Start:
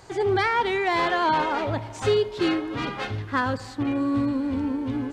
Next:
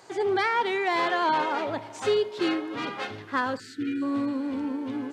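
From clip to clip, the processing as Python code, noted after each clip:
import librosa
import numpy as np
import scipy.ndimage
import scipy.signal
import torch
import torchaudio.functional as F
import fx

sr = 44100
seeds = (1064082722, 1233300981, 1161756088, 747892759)

y = fx.spec_erase(x, sr, start_s=3.59, length_s=0.43, low_hz=480.0, high_hz=1300.0)
y = scipy.signal.sosfilt(scipy.signal.butter(2, 230.0, 'highpass', fs=sr, output='sos'), y)
y = F.gain(torch.from_numpy(y), -2.0).numpy()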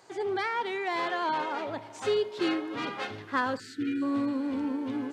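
y = fx.rider(x, sr, range_db=10, speed_s=2.0)
y = F.gain(torch.from_numpy(y), -4.0).numpy()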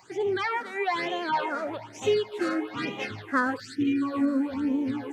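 y = fx.phaser_stages(x, sr, stages=8, low_hz=110.0, high_hz=1500.0, hz=1.1, feedback_pct=30)
y = F.gain(torch.from_numpy(y), 5.5).numpy()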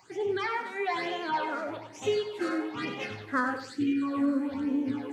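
y = fx.doubler(x, sr, ms=35.0, db=-12)
y = fx.echo_feedback(y, sr, ms=96, feedback_pct=27, wet_db=-9.5)
y = F.gain(torch.from_numpy(y), -3.5).numpy()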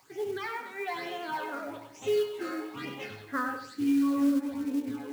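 y = fx.comb_fb(x, sr, f0_hz=140.0, decay_s=0.49, harmonics='all', damping=0.0, mix_pct=70)
y = fx.quant_companded(y, sr, bits=6)
y = F.gain(torch.from_numpy(y), 4.0).numpy()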